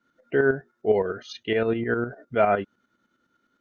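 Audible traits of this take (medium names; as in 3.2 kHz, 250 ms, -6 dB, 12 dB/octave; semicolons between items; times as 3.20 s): tremolo saw up 9.8 Hz, depth 60%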